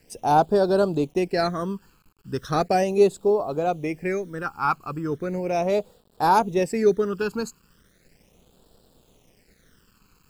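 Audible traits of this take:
a quantiser's noise floor 10 bits, dither none
phaser sweep stages 12, 0.37 Hz, lowest notch 610–2,100 Hz

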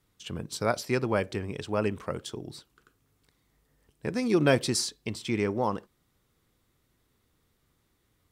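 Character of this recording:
background noise floor −73 dBFS
spectral slope −5.0 dB per octave

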